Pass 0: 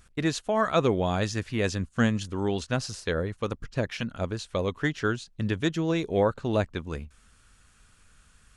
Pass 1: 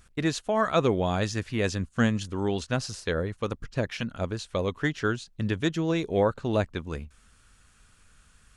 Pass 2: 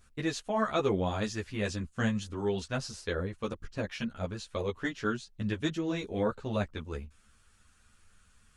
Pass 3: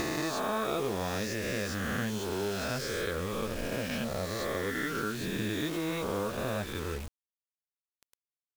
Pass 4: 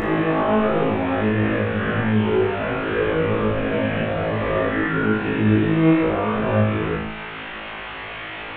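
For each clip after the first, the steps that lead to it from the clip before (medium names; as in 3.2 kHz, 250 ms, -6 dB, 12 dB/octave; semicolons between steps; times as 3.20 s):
de-esser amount 55%
three-phase chorus; trim -2 dB
reverse spectral sustain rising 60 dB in 2.15 s; compression 3:1, threshold -38 dBFS, peak gain reduction 13 dB; bit crusher 8-bit; trim +5 dB
one-bit delta coder 16 kbps, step -40.5 dBFS; flutter echo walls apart 3.2 m, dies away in 0.71 s; upward compressor, threshold -35 dBFS; trim +8 dB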